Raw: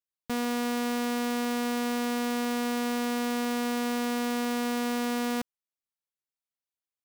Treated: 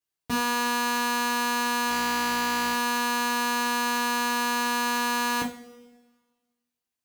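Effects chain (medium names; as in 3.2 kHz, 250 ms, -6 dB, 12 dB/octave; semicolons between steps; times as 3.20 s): 1.89–2.74 s: careless resampling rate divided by 4×, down none, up hold; two-slope reverb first 0.32 s, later 1.5 s, from -21 dB, DRR -5.5 dB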